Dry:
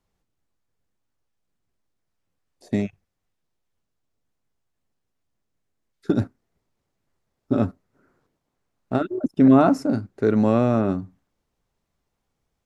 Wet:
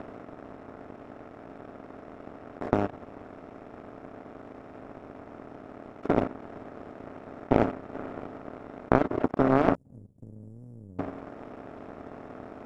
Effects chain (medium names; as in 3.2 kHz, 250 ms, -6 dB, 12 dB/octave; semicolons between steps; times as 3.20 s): spectral levelling over time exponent 0.2; tone controls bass -14 dB, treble -3 dB; 9.75–10.99 s: inverse Chebyshev band-stop 690–2300 Hz, stop band 80 dB; tilt EQ -3.5 dB/octave; in parallel at -0.5 dB: compression, threshold -24 dBFS, peak gain reduction 17 dB; on the sum: power-law waveshaper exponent 2; trim -6 dB